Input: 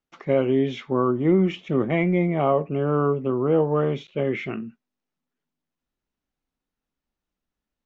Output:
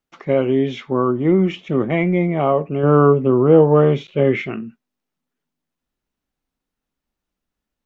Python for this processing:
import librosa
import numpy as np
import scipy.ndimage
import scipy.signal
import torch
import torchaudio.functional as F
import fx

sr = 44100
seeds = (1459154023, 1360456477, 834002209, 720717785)

y = fx.hpss(x, sr, part='harmonic', gain_db=6, at=(2.83, 4.42))
y = y * librosa.db_to_amplitude(3.5)